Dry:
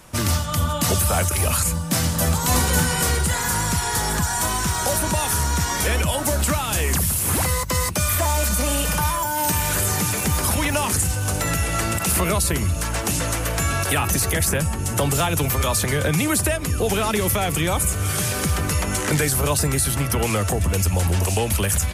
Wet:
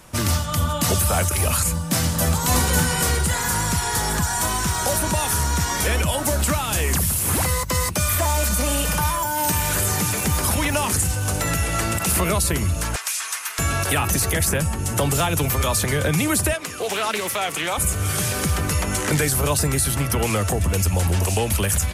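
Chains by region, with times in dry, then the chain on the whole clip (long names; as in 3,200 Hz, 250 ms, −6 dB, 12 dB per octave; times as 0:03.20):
0:12.96–0:13.59: high-pass filter 1,400 Hz 24 dB per octave + frequency shifter −230 Hz
0:16.53–0:17.78: meter weighting curve A + highs frequency-modulated by the lows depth 0.14 ms
whole clip: no processing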